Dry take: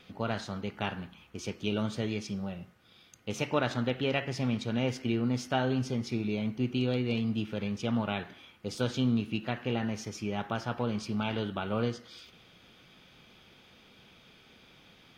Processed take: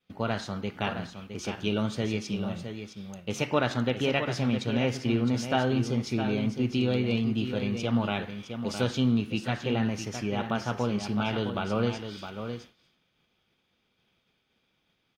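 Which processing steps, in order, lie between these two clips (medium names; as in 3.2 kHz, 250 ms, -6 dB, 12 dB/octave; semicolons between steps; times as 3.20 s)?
delay 662 ms -8.5 dB; expander -44 dBFS; trim +3 dB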